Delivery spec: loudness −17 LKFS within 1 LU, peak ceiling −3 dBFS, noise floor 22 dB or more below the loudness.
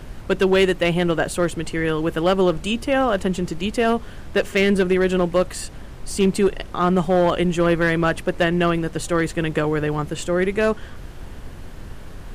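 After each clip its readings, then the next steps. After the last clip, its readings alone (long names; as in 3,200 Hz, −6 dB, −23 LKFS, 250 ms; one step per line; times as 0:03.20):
share of clipped samples 0.6%; peaks flattened at −10.5 dBFS; background noise floor −37 dBFS; target noise floor −43 dBFS; integrated loudness −20.5 LKFS; sample peak −10.5 dBFS; target loudness −17.0 LKFS
→ clipped peaks rebuilt −10.5 dBFS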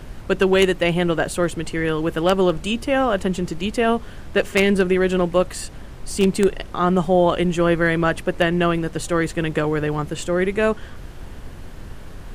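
share of clipped samples 0.0%; background noise floor −37 dBFS; target noise floor −43 dBFS
→ noise reduction from a noise print 6 dB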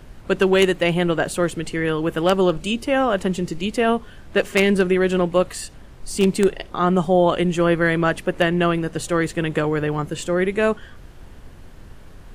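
background noise floor −42 dBFS; target noise floor −43 dBFS
→ noise reduction from a noise print 6 dB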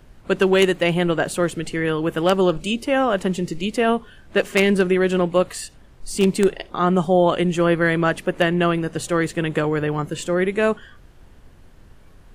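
background noise floor −48 dBFS; integrated loudness −20.5 LKFS; sample peak −1.5 dBFS; target loudness −17.0 LKFS
→ level +3.5 dB
brickwall limiter −3 dBFS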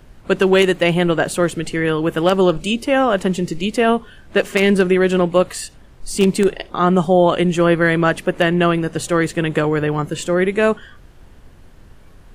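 integrated loudness −17.0 LKFS; sample peak −3.0 dBFS; background noise floor −44 dBFS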